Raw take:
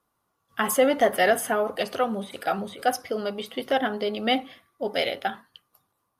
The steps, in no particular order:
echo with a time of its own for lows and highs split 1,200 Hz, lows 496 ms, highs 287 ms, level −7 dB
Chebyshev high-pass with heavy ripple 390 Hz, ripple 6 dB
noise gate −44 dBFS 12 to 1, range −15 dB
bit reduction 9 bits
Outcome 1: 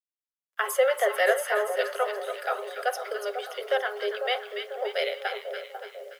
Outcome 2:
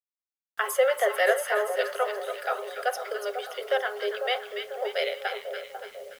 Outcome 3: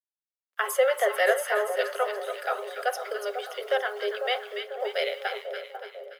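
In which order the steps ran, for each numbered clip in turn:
echo with a time of its own for lows and highs, then bit reduction, then noise gate, then Chebyshev high-pass with heavy ripple
echo with a time of its own for lows and highs, then noise gate, then Chebyshev high-pass with heavy ripple, then bit reduction
bit reduction, then echo with a time of its own for lows and highs, then noise gate, then Chebyshev high-pass with heavy ripple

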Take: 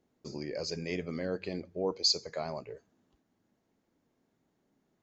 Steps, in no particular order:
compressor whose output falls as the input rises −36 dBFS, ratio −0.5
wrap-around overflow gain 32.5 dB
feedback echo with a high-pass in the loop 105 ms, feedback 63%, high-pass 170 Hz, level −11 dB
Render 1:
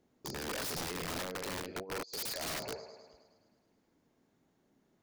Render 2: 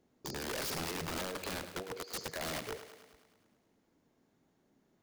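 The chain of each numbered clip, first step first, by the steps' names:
feedback echo with a high-pass in the loop, then compressor whose output falls as the input rises, then wrap-around overflow
compressor whose output falls as the input rises, then wrap-around overflow, then feedback echo with a high-pass in the loop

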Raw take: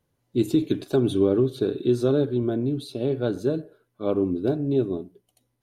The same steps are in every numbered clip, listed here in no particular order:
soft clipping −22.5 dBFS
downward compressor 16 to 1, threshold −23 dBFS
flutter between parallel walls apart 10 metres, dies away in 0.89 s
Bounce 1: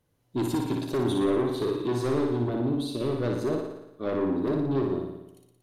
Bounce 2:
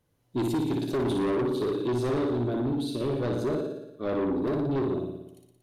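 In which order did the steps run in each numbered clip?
soft clipping, then downward compressor, then flutter between parallel walls
flutter between parallel walls, then soft clipping, then downward compressor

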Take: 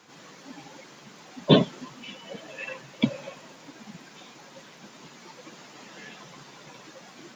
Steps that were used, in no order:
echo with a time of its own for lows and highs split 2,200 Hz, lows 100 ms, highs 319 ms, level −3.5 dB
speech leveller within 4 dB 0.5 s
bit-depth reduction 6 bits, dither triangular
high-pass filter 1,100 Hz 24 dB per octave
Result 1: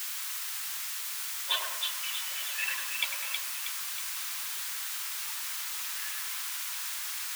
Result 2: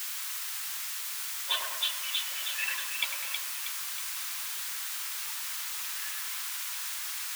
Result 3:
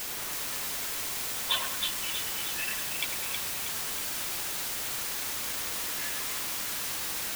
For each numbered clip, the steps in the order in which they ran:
speech leveller, then echo with a time of its own for lows and highs, then bit-depth reduction, then high-pass filter
echo with a time of its own for lows and highs, then speech leveller, then bit-depth reduction, then high-pass filter
high-pass filter, then speech leveller, then bit-depth reduction, then echo with a time of its own for lows and highs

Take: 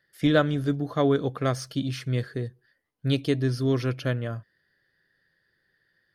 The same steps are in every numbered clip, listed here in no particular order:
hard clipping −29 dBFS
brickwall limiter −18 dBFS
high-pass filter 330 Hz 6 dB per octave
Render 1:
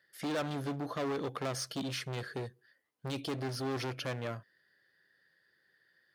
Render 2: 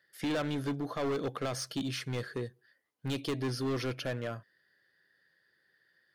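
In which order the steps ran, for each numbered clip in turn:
brickwall limiter, then hard clipping, then high-pass filter
high-pass filter, then brickwall limiter, then hard clipping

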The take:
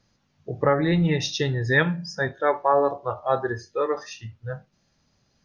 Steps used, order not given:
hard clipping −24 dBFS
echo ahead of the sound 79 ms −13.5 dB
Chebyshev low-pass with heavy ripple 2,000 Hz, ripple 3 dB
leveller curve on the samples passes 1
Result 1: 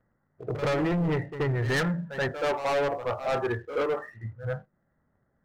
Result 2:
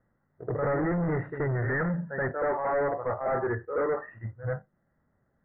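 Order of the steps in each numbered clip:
Chebyshev low-pass with heavy ripple, then hard clipping, then echo ahead of the sound, then leveller curve on the samples
echo ahead of the sound, then leveller curve on the samples, then hard clipping, then Chebyshev low-pass with heavy ripple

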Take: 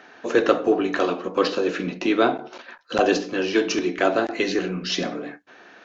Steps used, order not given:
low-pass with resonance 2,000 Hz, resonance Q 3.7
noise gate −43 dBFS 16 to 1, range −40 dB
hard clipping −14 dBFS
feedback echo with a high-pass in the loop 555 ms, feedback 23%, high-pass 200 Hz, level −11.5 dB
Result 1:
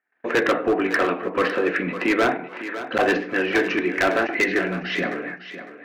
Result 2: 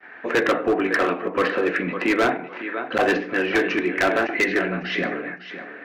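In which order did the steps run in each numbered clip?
noise gate, then low-pass with resonance, then hard clipping, then feedback echo with a high-pass in the loop
low-pass with resonance, then noise gate, then feedback echo with a high-pass in the loop, then hard clipping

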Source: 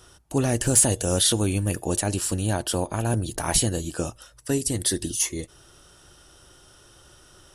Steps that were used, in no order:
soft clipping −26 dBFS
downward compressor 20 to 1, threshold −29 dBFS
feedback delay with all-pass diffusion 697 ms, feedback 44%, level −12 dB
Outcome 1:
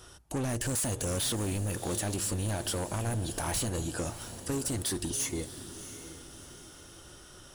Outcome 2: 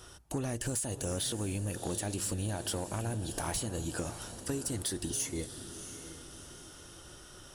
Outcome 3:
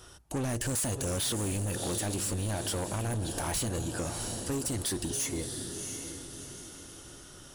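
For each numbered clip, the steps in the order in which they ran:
soft clipping, then downward compressor, then feedback delay with all-pass diffusion
downward compressor, then feedback delay with all-pass diffusion, then soft clipping
feedback delay with all-pass diffusion, then soft clipping, then downward compressor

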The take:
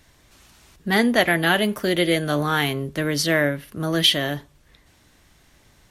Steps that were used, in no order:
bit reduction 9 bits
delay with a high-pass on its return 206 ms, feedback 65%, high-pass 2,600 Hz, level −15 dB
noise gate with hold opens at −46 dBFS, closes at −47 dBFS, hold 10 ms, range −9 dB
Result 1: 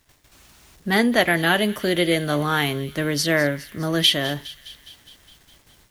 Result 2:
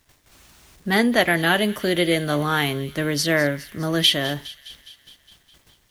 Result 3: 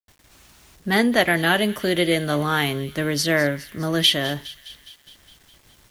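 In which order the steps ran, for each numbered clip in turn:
delay with a high-pass on its return, then bit reduction, then noise gate with hold
bit reduction, then noise gate with hold, then delay with a high-pass on its return
noise gate with hold, then delay with a high-pass on its return, then bit reduction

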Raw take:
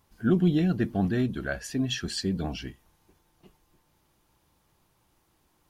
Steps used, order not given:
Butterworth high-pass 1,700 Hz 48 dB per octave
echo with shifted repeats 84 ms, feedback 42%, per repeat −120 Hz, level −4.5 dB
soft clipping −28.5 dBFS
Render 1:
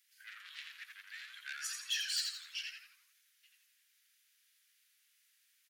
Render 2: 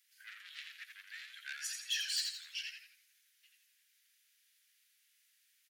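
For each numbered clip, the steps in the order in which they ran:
soft clipping, then Butterworth high-pass, then echo with shifted repeats
soft clipping, then echo with shifted repeats, then Butterworth high-pass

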